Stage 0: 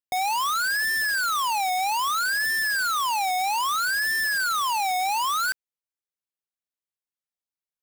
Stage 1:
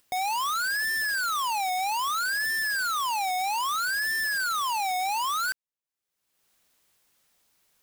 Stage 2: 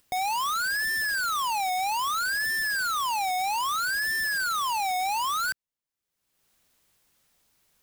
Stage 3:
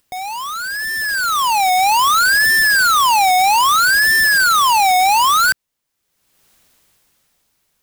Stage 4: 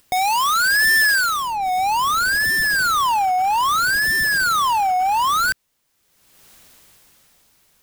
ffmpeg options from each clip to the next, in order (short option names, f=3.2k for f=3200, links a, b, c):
-af "acompressor=mode=upward:threshold=-43dB:ratio=2.5,volume=-3dB"
-af "lowshelf=f=210:g=7"
-af "dynaudnorm=f=240:g=11:m=13dB,volume=1.5dB"
-af "aeval=exprs='0.0891*(abs(mod(val(0)/0.0891+3,4)-2)-1)':c=same,volume=7dB"